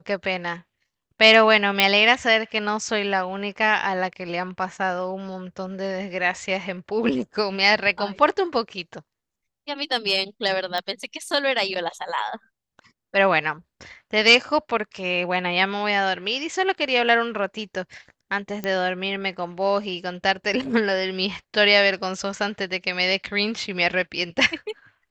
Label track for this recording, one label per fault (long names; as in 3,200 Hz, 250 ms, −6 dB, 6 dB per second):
1.800000	1.800000	click −2 dBFS
10.780000	10.780000	click −14 dBFS
18.640000	18.640000	click −14 dBFS